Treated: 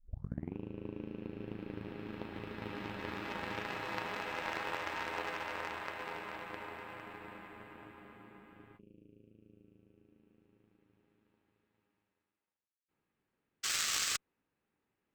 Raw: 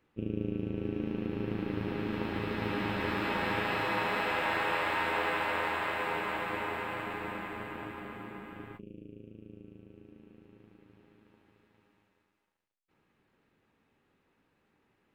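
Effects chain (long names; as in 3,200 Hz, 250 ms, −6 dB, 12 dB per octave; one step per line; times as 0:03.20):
turntable start at the beginning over 0.57 s
sound drawn into the spectrogram noise, 0:13.63–0:14.17, 1,100–8,400 Hz −28 dBFS
harmonic generator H 3 −12 dB, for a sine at −16.5 dBFS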